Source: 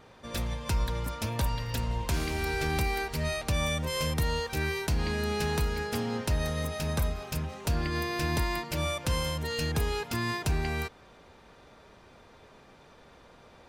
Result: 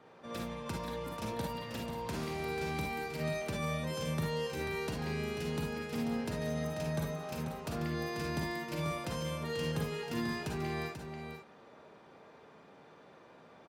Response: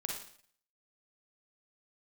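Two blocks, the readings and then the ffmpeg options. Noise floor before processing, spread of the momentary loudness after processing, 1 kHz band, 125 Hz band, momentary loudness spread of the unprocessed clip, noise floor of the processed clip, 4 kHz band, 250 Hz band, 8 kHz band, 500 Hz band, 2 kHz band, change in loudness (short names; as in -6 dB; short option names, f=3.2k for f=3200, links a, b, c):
-55 dBFS, 9 LU, -5.5 dB, -7.0 dB, 4 LU, -58 dBFS, -8.5 dB, -2.0 dB, -9.5 dB, -3.0 dB, -7.0 dB, -6.0 dB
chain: -filter_complex "[0:a]highpass=170,highshelf=f=2.9k:g=-11,acrossover=split=330|3000[a][b][c];[b]acompressor=threshold=-41dB:ratio=2.5[d];[a][d][c]amix=inputs=3:normalize=0,aecho=1:1:489:0.422[e];[1:a]atrim=start_sample=2205,atrim=end_sample=3528[f];[e][f]afir=irnorm=-1:irlink=0,volume=-1dB"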